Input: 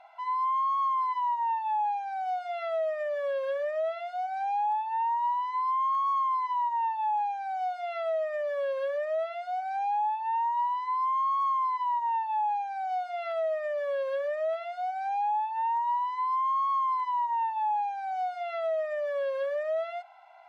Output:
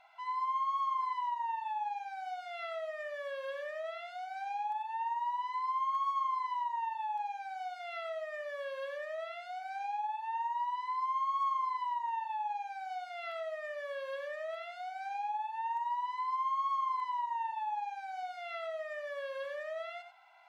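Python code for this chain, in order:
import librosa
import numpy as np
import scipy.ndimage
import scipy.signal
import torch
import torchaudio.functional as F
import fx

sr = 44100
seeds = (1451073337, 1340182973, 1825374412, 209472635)

p1 = fx.peak_eq(x, sr, hz=590.0, db=-11.5, octaves=1.9)
y = p1 + fx.echo_single(p1, sr, ms=93, db=-8.0, dry=0)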